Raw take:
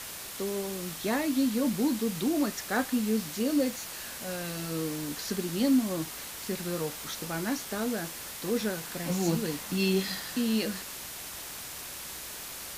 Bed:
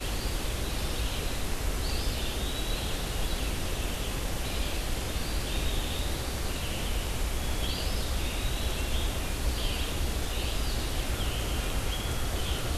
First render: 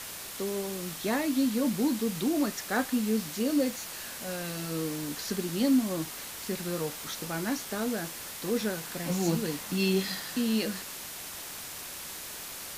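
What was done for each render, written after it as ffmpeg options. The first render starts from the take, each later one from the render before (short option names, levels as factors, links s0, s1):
-af "bandreject=f=60:t=h:w=4,bandreject=f=120:t=h:w=4"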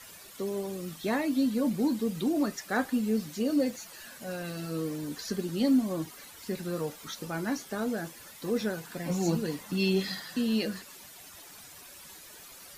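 -af "afftdn=nr=12:nf=-41"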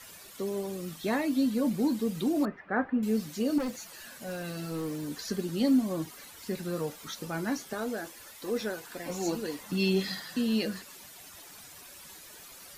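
-filter_complex "[0:a]asettb=1/sr,asplit=3[s0][s1][s2];[s0]atrim=end=2.454[s3];[s1]atrim=start=2.45:end=3.03,asetpts=PTS-STARTPTS,afade=t=in:d=0.004:c=qsin,afade=t=out:st=0.576:d=0.004:c=qsin,lowpass=f=2000:w=0.5412,lowpass=f=2000:w=1.3066[s4];[s2]atrim=start=3.026[s5];[s3][s4]acrossfade=d=0.004:c1=hsin:c2=qsin[s6];[s6][s5]acrossfade=d=0.004:c1=qsin:c2=hsin,asettb=1/sr,asplit=3[s7][s8][s9];[s7]atrim=end=3.584[s10];[s8]atrim=start=3.58:end=5.06,asetpts=PTS-STARTPTS,afade=t=in:d=0.004:c=qsin,afade=t=out:st=1.476:d=0.004:c=qsin,asoftclip=type=hard:threshold=0.0335[s11];[s9]atrim=start=5.056[s12];[s10][s11]acrossfade=d=0.004:c1=hsin:c2=qsin[s13];[s13][s12]acrossfade=d=0.004:c1=qsin:c2=hsin,asettb=1/sr,asplit=3[s14][s15][s16];[s14]atrim=end=7.734[s17];[s15]atrim=start=7.73:end=9.63,asetpts=PTS-STARTPTS,afade=t=in:d=0.004:c=qsin,afade=t=out:st=1.896:d=0.004:c=qsin,equalizer=f=160:t=o:w=0.77:g=-13[s18];[s16]atrim=start=9.626[s19];[s17][s18]acrossfade=d=0.004:c1=hsin:c2=qsin[s20];[s20][s19]acrossfade=d=0.004:c1=qsin:c2=hsin"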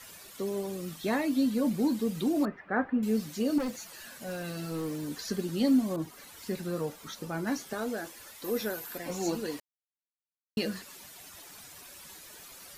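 -filter_complex "[0:a]asettb=1/sr,asplit=3[s0][s1][s2];[s0]atrim=end=5.964[s3];[s1]atrim=start=5.96:end=7.47,asetpts=PTS-STARTPTS,afade=t=in:d=0.004:c=qsin,afade=t=out:st=1.506:d=0.004:c=qsin,adynamicequalizer=threshold=0.00282:dfrequency=1600:dqfactor=0.7:tfrequency=1600:tqfactor=0.7:attack=5:release=100:ratio=0.375:range=2.5:mode=cutabove:tftype=highshelf[s4];[s2]atrim=start=7.466[s5];[s3][s4]acrossfade=d=0.004:c1=hsin:c2=qsin[s6];[s6][s5]acrossfade=d=0.004:c1=qsin:c2=hsin,asettb=1/sr,asplit=3[s7][s8][s9];[s7]atrim=end=8.444[s10];[s8]atrim=start=8.44:end=8.98,asetpts=PTS-STARTPTS,afade=t=in:d=0.004:c=qsin,afade=t=out:st=0.536:d=0.004:c=qsin,equalizer=f=13000:t=o:w=0.36:g=13.5[s11];[s9]atrim=start=8.976[s12];[s10][s11]acrossfade=d=0.004:c1=hsin:c2=qsin[s13];[s13][s12]acrossfade=d=0.004:c1=qsin:c2=hsin,asplit=3[s14][s15][s16];[s14]atrim=end=9.6,asetpts=PTS-STARTPTS,afade=t=out:st=9.596:d=0.004:c=hsin[s17];[s15]atrim=start=9.6:end=10.57,asetpts=PTS-STARTPTS,volume=0[s18];[s16]atrim=start=10.57,asetpts=PTS-STARTPTS,afade=t=in:d=0.004:c=hsin[s19];[s17][s18][s19]concat=n=3:v=0:a=1"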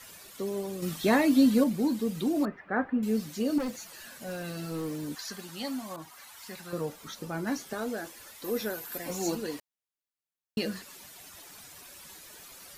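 -filter_complex "[0:a]asettb=1/sr,asplit=3[s0][s1][s2];[s0]atrim=end=0.824[s3];[s1]atrim=start=0.82:end=1.64,asetpts=PTS-STARTPTS,afade=t=in:d=0.004:c=qsin,afade=t=out:st=0.816:d=0.004:c=qsin,acontrast=50[s4];[s2]atrim=start=1.636[s5];[s3][s4]acrossfade=d=0.004:c1=hsin:c2=qsin[s6];[s6][s5]acrossfade=d=0.004:c1=qsin:c2=hsin,asettb=1/sr,asplit=3[s7][s8][s9];[s7]atrim=end=5.154[s10];[s8]atrim=start=5.15:end=6.73,asetpts=PTS-STARTPTS,afade=t=in:d=0.004:c=qsin,afade=t=out:st=1.576:d=0.004:c=qsin,lowshelf=f=590:t=q:w=1.5:g=-10.5[s11];[s9]atrim=start=6.726[s12];[s10][s11]acrossfade=d=0.004:c1=hsin:c2=qsin[s13];[s13][s12]acrossfade=d=0.004:c1=qsin:c2=hsin,asettb=1/sr,asplit=3[s14][s15][s16];[s14]atrim=end=8.924[s17];[s15]atrim=start=8.92:end=9.35,asetpts=PTS-STARTPTS,afade=t=in:d=0.004:c=qsin,afade=t=out:st=0.426:d=0.004:c=qsin,highshelf=f=8200:g=8[s18];[s16]atrim=start=9.346[s19];[s17][s18]acrossfade=d=0.004:c1=hsin:c2=qsin[s20];[s20][s19]acrossfade=d=0.004:c1=qsin:c2=hsin"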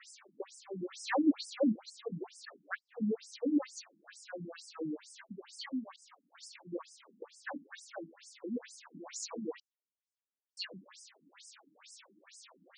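-af "asoftclip=type=tanh:threshold=0.211,afftfilt=real='re*between(b*sr/1024,220*pow(7000/220,0.5+0.5*sin(2*PI*2.2*pts/sr))/1.41,220*pow(7000/220,0.5+0.5*sin(2*PI*2.2*pts/sr))*1.41)':imag='im*between(b*sr/1024,220*pow(7000/220,0.5+0.5*sin(2*PI*2.2*pts/sr))/1.41,220*pow(7000/220,0.5+0.5*sin(2*PI*2.2*pts/sr))*1.41)':win_size=1024:overlap=0.75"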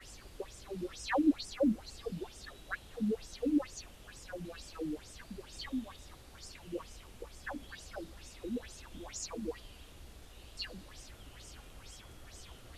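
-filter_complex "[1:a]volume=0.075[s0];[0:a][s0]amix=inputs=2:normalize=0"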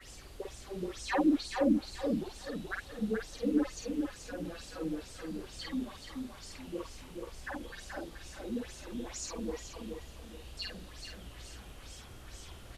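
-filter_complex "[0:a]asplit=2[s0][s1];[s1]adelay=50,volume=0.668[s2];[s0][s2]amix=inputs=2:normalize=0,asplit=2[s3][s4];[s4]adelay=428,lowpass=f=4400:p=1,volume=0.562,asplit=2[s5][s6];[s6]adelay=428,lowpass=f=4400:p=1,volume=0.33,asplit=2[s7][s8];[s8]adelay=428,lowpass=f=4400:p=1,volume=0.33,asplit=2[s9][s10];[s10]adelay=428,lowpass=f=4400:p=1,volume=0.33[s11];[s3][s5][s7][s9][s11]amix=inputs=5:normalize=0"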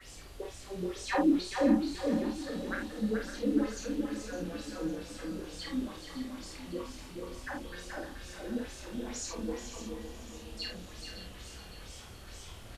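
-filter_complex "[0:a]asplit=2[s0][s1];[s1]adelay=28,volume=0.562[s2];[s0][s2]amix=inputs=2:normalize=0,aecho=1:1:558|1116|1674|2232|2790:0.299|0.143|0.0688|0.033|0.0158"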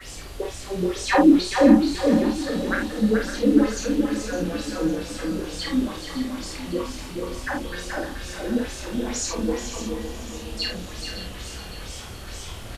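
-af "volume=3.76"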